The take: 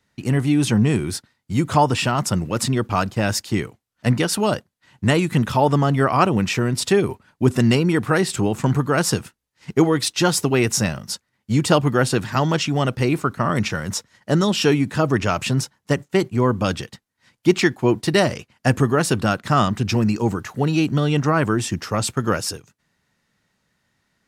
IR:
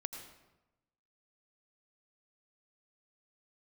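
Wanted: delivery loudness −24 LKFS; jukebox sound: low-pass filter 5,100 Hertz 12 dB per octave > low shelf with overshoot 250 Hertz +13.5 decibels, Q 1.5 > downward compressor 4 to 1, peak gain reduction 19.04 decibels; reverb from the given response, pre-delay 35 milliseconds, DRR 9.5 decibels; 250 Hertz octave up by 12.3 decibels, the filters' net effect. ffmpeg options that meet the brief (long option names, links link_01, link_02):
-filter_complex "[0:a]equalizer=frequency=250:width_type=o:gain=3.5,asplit=2[link_01][link_02];[1:a]atrim=start_sample=2205,adelay=35[link_03];[link_02][link_03]afir=irnorm=-1:irlink=0,volume=-8.5dB[link_04];[link_01][link_04]amix=inputs=2:normalize=0,lowpass=5100,lowshelf=frequency=250:width_type=q:width=1.5:gain=13.5,acompressor=threshold=-20dB:ratio=4,volume=-2dB"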